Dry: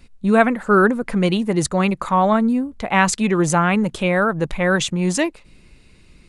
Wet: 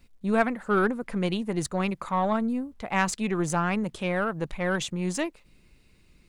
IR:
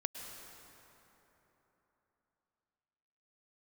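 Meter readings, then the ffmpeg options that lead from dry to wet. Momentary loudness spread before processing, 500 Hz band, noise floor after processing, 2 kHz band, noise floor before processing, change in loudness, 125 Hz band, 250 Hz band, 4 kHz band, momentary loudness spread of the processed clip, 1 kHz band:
5 LU, -9.0 dB, -60 dBFS, -9.5 dB, -50 dBFS, -9.5 dB, -9.0 dB, -9.5 dB, -9.0 dB, 5 LU, -9.0 dB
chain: -af "acrusher=bits=10:mix=0:aa=0.000001,aeval=exprs='0.841*(cos(1*acos(clip(val(0)/0.841,-1,1)))-cos(1*PI/2))+0.0531*(cos(3*acos(clip(val(0)/0.841,-1,1)))-cos(3*PI/2))+0.0266*(cos(4*acos(clip(val(0)/0.841,-1,1)))-cos(4*PI/2))+0.0106*(cos(8*acos(clip(val(0)/0.841,-1,1)))-cos(8*PI/2))':c=same,volume=-8dB"

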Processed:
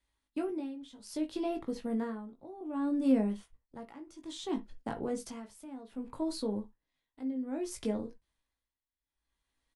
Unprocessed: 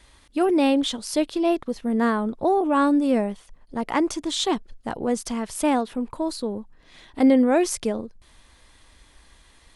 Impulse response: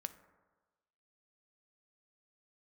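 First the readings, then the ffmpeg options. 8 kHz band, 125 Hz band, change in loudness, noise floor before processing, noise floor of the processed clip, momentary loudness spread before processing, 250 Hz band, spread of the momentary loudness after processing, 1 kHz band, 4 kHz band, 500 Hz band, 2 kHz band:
-16.5 dB, -6.5 dB, -13.0 dB, -56 dBFS, under -85 dBFS, 13 LU, -12.0 dB, 17 LU, -19.0 dB, -17.5 dB, -14.5 dB, -19.5 dB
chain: -filter_complex "[0:a]agate=range=-22dB:threshold=-41dB:ratio=16:detection=peak,acrossover=split=400[a][b];[b]acompressor=threshold=-30dB:ratio=10[c];[a][c]amix=inputs=2:normalize=0,tremolo=f=0.62:d=0.88,asplit=2[d][e];[e]adelay=19,volume=-5dB[f];[d][f]amix=inputs=2:normalize=0[g];[1:a]atrim=start_sample=2205,afade=t=out:st=0.16:d=0.01,atrim=end_sample=7497,asetrate=66150,aresample=44100[h];[g][h]afir=irnorm=-1:irlink=0"

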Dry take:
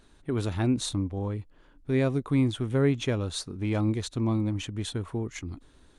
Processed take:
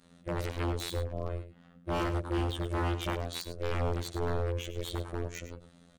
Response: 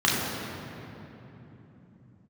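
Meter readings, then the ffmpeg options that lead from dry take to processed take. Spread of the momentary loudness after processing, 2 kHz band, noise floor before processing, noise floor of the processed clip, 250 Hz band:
9 LU, -2.0 dB, -59 dBFS, -60 dBFS, -10.5 dB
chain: -filter_complex "[0:a]adynamicequalizer=threshold=0.0141:dfrequency=250:dqfactor=0.83:tfrequency=250:tqfactor=0.83:attack=5:release=100:ratio=0.375:range=2:mode=cutabove:tftype=bell,aeval=exprs='val(0)*sin(2*PI*210*n/s)':c=same,afftfilt=real='hypot(re,im)*cos(PI*b)':imag='0':win_size=2048:overlap=0.75,aeval=exprs='0.0447*(abs(mod(val(0)/0.0447+3,4)-2)-1)':c=same,asplit=2[a][b];[b]aecho=0:1:103:0.251[c];[a][c]amix=inputs=2:normalize=0,volume=4.5dB"

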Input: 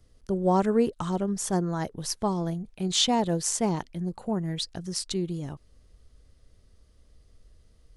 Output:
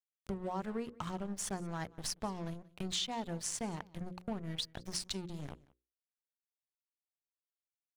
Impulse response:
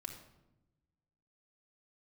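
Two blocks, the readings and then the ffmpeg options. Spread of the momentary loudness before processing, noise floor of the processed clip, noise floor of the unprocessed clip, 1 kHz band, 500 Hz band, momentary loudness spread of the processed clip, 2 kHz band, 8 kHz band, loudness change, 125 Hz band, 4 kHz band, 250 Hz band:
10 LU, under -85 dBFS, -61 dBFS, -12.5 dB, -15.0 dB, 8 LU, -6.5 dB, -9.5 dB, -12.0 dB, -12.5 dB, -9.5 dB, -13.5 dB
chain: -filter_complex "[0:a]tiltshelf=f=730:g=-7,aeval=exprs='sgn(val(0))*max(abs(val(0))-0.0119,0)':c=same,bass=f=250:g=10,treble=f=4k:g=-8,acompressor=threshold=-37dB:ratio=6,bandreject=f=60:t=h:w=6,bandreject=f=120:t=h:w=6,bandreject=f=180:t=h:w=6,bandreject=f=240:t=h:w=6,bandreject=f=300:t=h:w=6,bandreject=f=360:t=h:w=6,bandreject=f=420:t=h:w=6,bandreject=f=480:t=h:w=6,bandreject=f=540:t=h:w=6,asplit=2[a][b];[b]aecho=0:1:181:0.0708[c];[a][c]amix=inputs=2:normalize=0,volume=1.5dB"

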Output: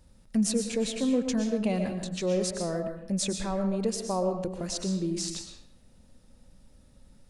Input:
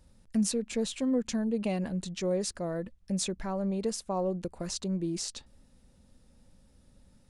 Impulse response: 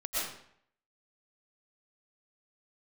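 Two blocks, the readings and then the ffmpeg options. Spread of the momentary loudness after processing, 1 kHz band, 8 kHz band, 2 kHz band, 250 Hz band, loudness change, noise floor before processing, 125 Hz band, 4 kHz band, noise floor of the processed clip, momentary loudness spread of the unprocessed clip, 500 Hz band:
6 LU, +3.0 dB, +3.0 dB, +3.0 dB, +2.5 dB, +2.5 dB, -62 dBFS, +2.5 dB, +3.0 dB, -58 dBFS, 6 LU, +3.0 dB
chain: -filter_complex "[0:a]asplit=2[a][b];[1:a]atrim=start_sample=2205[c];[b][c]afir=irnorm=-1:irlink=0,volume=-8.5dB[d];[a][d]amix=inputs=2:normalize=0"

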